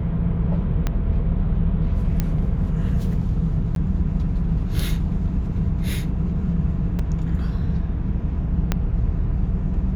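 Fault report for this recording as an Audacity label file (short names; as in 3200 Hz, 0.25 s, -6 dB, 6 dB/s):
0.870000	0.870000	pop -10 dBFS
2.200000	2.200000	pop -9 dBFS
3.750000	3.760000	gap 12 ms
6.990000	6.990000	gap 3.8 ms
8.720000	8.720000	pop -7 dBFS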